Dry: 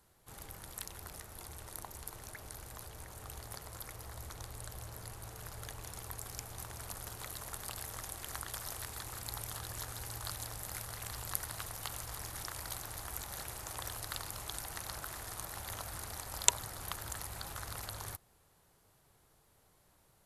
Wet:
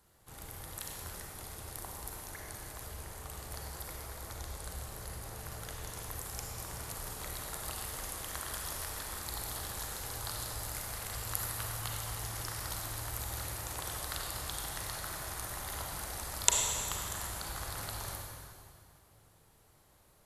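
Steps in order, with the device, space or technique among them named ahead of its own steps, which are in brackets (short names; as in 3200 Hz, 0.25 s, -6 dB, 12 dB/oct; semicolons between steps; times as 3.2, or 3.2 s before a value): stairwell (reverb RT60 2.2 s, pre-delay 32 ms, DRR -0.5 dB)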